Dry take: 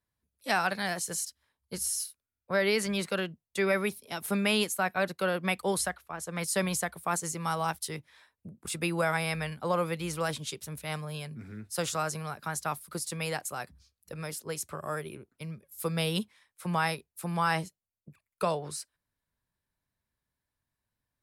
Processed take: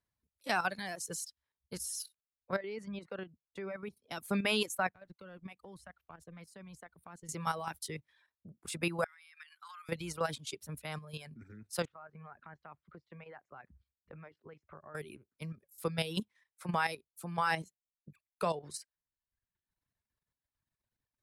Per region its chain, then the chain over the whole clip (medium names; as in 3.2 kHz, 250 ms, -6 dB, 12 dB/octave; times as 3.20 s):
2.56–4.11 s: low-pass 1.1 kHz 6 dB/octave + compression 1.5:1, threshold -44 dBFS
4.89–7.29 s: companding laws mixed up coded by A + compression 3:1, threshold -48 dBFS + tone controls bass +8 dB, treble -8 dB
9.04–9.89 s: steep high-pass 1.2 kHz + compression 12:1, threshold -42 dBFS + treble shelf 3.1 kHz -3.5 dB
11.85–14.95 s: compression 2.5:1, threshold -48 dBFS + low-pass 2.3 kHz 24 dB/octave
whole clip: reverb removal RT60 0.91 s; treble shelf 9.1 kHz -6 dB; level held to a coarse grid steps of 10 dB